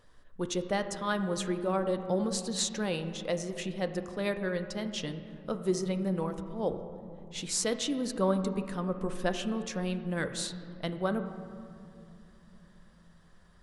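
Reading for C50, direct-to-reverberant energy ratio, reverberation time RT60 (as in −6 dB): 9.5 dB, 8.0 dB, 2.7 s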